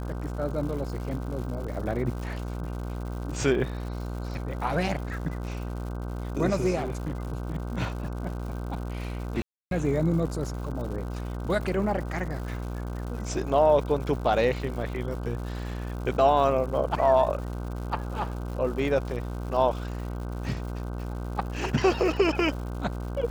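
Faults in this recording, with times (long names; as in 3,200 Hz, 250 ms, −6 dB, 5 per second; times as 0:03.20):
mains buzz 60 Hz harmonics 26 −33 dBFS
surface crackle 200 per second −37 dBFS
0:01.68: drop-out 4.7 ms
0:06.75–0:07.25: clipping −26 dBFS
0:09.42–0:09.71: drop-out 292 ms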